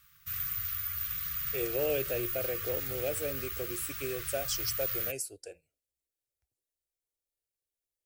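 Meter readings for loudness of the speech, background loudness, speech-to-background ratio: −36.0 LKFS, −33.5 LKFS, −2.5 dB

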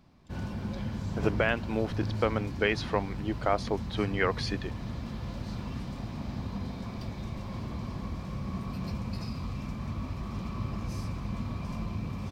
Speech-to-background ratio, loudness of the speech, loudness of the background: 5.5 dB, −31.0 LKFS, −36.5 LKFS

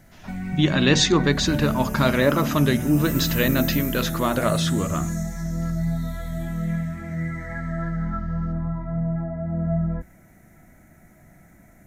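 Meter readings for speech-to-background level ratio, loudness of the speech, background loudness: 6.0 dB, −21.5 LKFS, −27.5 LKFS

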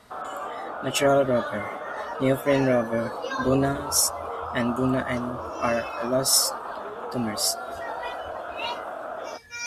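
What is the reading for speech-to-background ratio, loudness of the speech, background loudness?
9.5 dB, −25.0 LKFS, −34.5 LKFS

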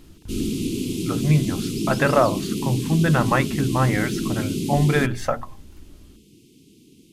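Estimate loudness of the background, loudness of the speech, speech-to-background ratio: −26.5 LKFS, −22.5 LKFS, 4.0 dB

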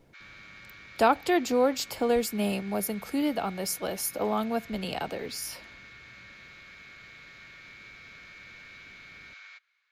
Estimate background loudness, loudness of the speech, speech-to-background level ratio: −47.0 LKFS, −28.5 LKFS, 18.5 dB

